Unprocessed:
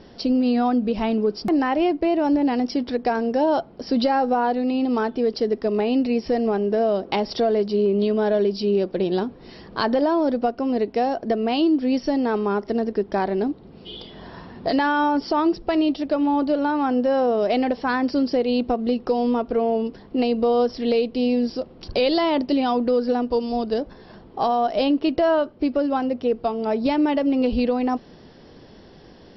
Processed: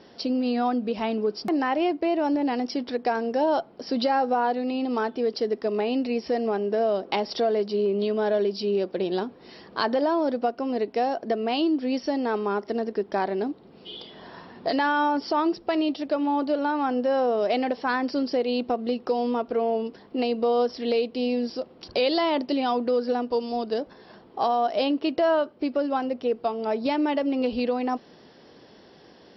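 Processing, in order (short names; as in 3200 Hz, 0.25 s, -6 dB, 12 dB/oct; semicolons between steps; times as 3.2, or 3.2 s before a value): HPF 330 Hz 6 dB/oct; gain -1.5 dB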